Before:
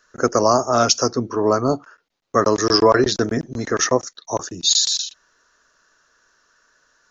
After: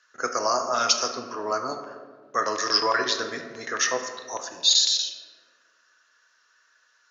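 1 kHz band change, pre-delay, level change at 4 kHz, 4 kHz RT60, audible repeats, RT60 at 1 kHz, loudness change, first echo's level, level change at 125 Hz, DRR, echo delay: −5.5 dB, 4 ms, −1.5 dB, 0.85 s, no echo audible, 1.4 s, −5.5 dB, no echo audible, −23.0 dB, 4.5 dB, no echo audible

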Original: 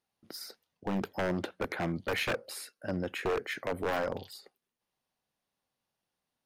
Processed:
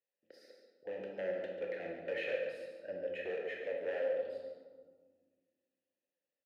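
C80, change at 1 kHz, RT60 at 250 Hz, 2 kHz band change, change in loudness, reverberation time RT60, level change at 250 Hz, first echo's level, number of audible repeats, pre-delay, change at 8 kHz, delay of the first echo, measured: 4.0 dB, −16.0 dB, 2.6 s, −7.5 dB, −5.0 dB, 1.7 s, −15.5 dB, −10.0 dB, 1, 22 ms, below −25 dB, 142 ms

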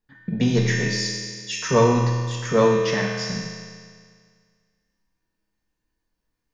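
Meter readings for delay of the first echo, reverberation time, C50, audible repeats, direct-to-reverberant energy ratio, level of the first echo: no echo audible, 1.9 s, −0.5 dB, no echo audible, −4.5 dB, no echo audible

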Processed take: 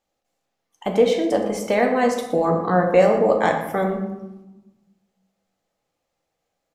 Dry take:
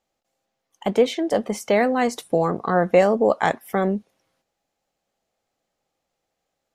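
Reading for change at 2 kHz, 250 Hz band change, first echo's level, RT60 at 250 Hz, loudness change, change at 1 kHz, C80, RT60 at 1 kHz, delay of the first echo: +0.5 dB, +1.0 dB, −13.5 dB, 1.6 s, +1.5 dB, +1.5 dB, 8.0 dB, 1.0 s, 119 ms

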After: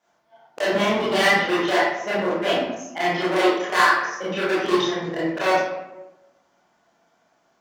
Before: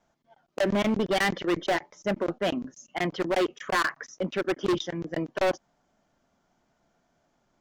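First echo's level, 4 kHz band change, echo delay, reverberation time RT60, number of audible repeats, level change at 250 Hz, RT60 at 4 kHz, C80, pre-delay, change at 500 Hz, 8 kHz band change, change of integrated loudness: no echo audible, +8.5 dB, no echo audible, 1.0 s, no echo audible, +4.0 dB, 0.60 s, 3.0 dB, 21 ms, +6.0 dB, +6.5 dB, +7.0 dB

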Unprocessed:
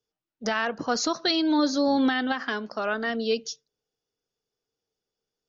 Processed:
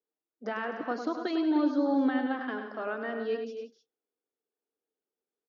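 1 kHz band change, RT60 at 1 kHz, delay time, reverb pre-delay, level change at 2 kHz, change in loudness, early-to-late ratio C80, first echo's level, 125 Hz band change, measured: −6.0 dB, no reverb audible, 101 ms, no reverb audible, −8.0 dB, −5.0 dB, no reverb audible, −8.0 dB, can't be measured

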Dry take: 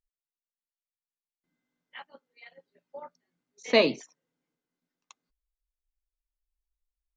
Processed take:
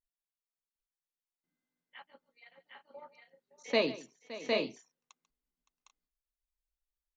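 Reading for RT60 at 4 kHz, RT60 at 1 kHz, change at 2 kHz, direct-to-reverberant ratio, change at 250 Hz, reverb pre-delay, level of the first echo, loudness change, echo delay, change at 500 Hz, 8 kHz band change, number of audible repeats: no reverb audible, no reverb audible, −5.5 dB, no reverb audible, −5.5 dB, no reverb audible, −17.5 dB, −9.5 dB, 142 ms, −5.5 dB, can't be measured, 4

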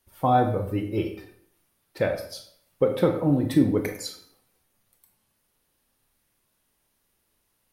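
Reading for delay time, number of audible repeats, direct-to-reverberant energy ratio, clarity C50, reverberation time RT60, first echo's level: no echo audible, no echo audible, 5.0 dB, 8.0 dB, 0.65 s, no echo audible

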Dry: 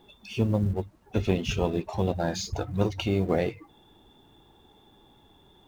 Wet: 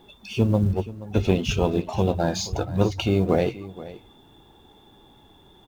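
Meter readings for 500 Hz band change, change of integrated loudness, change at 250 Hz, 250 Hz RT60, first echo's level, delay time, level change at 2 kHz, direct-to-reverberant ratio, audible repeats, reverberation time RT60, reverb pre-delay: +4.5 dB, +4.5 dB, +4.5 dB, no reverb audible, −17.0 dB, 477 ms, +3.0 dB, no reverb audible, 1, no reverb audible, no reverb audible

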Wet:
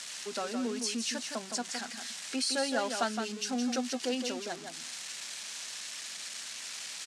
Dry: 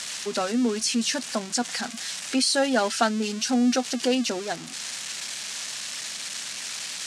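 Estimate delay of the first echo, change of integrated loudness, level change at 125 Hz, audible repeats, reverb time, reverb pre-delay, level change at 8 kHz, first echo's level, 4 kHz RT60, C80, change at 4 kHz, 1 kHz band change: 165 ms, −8.5 dB, below −10 dB, 1, no reverb audible, no reverb audible, −7.5 dB, −6.5 dB, no reverb audible, no reverb audible, −7.5 dB, −8.0 dB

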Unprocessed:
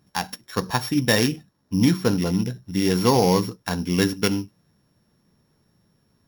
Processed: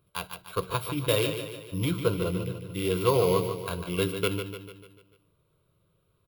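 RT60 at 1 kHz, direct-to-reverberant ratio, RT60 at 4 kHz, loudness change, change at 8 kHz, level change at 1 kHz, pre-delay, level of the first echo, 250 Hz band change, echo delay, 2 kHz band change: no reverb audible, no reverb audible, no reverb audible, −6.5 dB, −7.5 dB, −6.5 dB, no reverb audible, −8.5 dB, −11.0 dB, 148 ms, −8.0 dB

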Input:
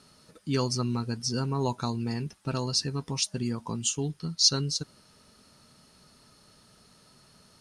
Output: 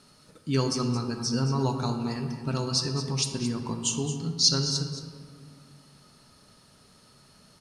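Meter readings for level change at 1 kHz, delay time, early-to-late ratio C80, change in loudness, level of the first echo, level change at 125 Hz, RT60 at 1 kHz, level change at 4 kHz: +1.5 dB, 221 ms, 6.5 dB, +1.5 dB, −11.5 dB, +2.5 dB, 1.8 s, +1.0 dB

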